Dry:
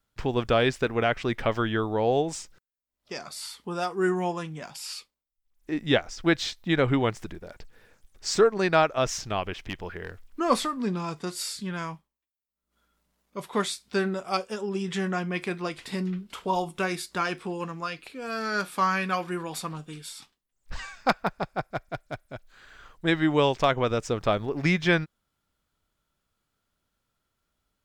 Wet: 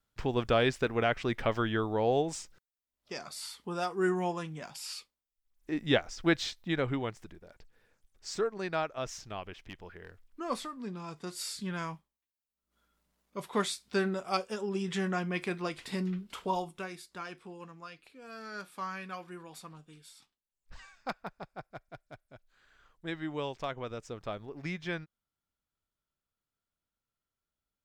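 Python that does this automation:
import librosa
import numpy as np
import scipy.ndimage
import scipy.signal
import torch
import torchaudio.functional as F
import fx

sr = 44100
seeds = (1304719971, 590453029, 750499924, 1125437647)

y = fx.gain(x, sr, db=fx.line((6.36, -4.0), (7.19, -11.5), (10.94, -11.5), (11.61, -3.5), (16.45, -3.5), (16.92, -14.0)))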